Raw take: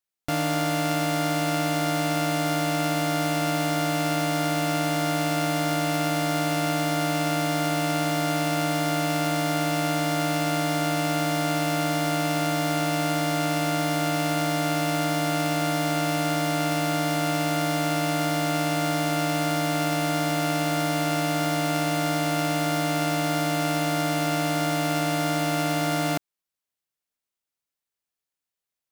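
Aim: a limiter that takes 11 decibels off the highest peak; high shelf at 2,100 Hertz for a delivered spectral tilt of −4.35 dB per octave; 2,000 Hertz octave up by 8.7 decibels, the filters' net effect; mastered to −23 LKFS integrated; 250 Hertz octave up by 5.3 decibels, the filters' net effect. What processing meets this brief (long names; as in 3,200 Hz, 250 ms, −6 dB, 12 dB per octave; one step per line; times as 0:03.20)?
parametric band 250 Hz +7 dB
parametric band 2,000 Hz +8 dB
high-shelf EQ 2,100 Hz +4.5 dB
level +3.5 dB
brickwall limiter −15.5 dBFS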